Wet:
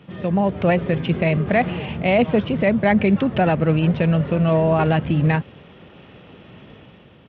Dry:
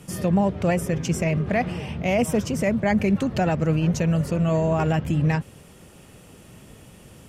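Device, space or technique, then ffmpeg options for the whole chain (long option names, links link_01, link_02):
Bluetooth headset: -af "highpass=frequency=130:poles=1,dynaudnorm=framelen=100:gausssize=9:maxgain=5.5dB,aresample=8000,aresample=44100" -ar 32000 -c:a sbc -b:a 64k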